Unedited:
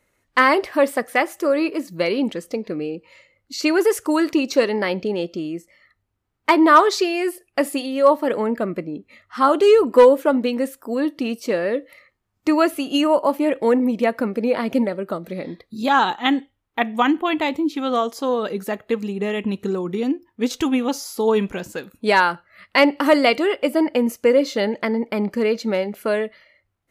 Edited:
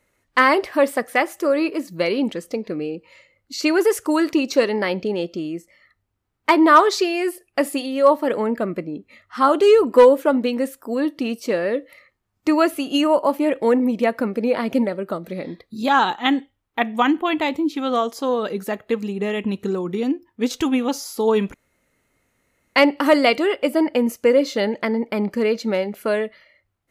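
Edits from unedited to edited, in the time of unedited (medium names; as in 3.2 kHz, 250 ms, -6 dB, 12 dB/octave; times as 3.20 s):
21.54–22.76 s: room tone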